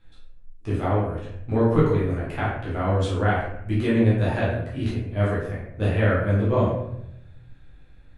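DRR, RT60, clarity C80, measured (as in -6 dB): -9.0 dB, 0.75 s, 4.5 dB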